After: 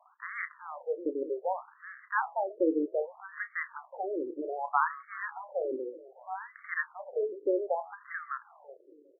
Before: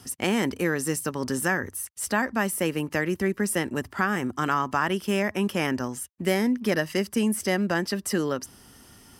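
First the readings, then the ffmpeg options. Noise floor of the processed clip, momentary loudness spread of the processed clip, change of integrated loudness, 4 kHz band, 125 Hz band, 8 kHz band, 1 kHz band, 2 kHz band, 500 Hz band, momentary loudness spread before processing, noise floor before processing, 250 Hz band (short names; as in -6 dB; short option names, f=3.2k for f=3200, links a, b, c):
-62 dBFS, 12 LU, -8.0 dB, under -40 dB, under -40 dB, under -40 dB, -4.0 dB, -8.5 dB, -4.5 dB, 5 LU, -53 dBFS, -12.5 dB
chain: -filter_complex "[0:a]lowshelf=f=260:g=5.5,bandreject=f=166.5:t=h:w=4,bandreject=f=333:t=h:w=4,bandreject=f=499.5:t=h:w=4,bandreject=f=666:t=h:w=4,bandreject=f=832.5:t=h:w=4,asplit=2[a][b];[b]aecho=0:1:371|742:0.119|0.0309[c];[a][c]amix=inputs=2:normalize=0,acrusher=bits=8:dc=4:mix=0:aa=0.000001,lowpass=2.2k,equalizer=f=84:t=o:w=2:g=-5.5,asplit=2[d][e];[e]adelay=31,volume=-12.5dB[f];[d][f]amix=inputs=2:normalize=0,afftfilt=real='re*between(b*sr/1024,390*pow(1600/390,0.5+0.5*sin(2*PI*0.64*pts/sr))/1.41,390*pow(1600/390,0.5+0.5*sin(2*PI*0.64*pts/sr))*1.41)':imag='im*between(b*sr/1024,390*pow(1600/390,0.5+0.5*sin(2*PI*0.64*pts/sr))/1.41,390*pow(1600/390,0.5+0.5*sin(2*PI*0.64*pts/sr))*1.41)':win_size=1024:overlap=0.75"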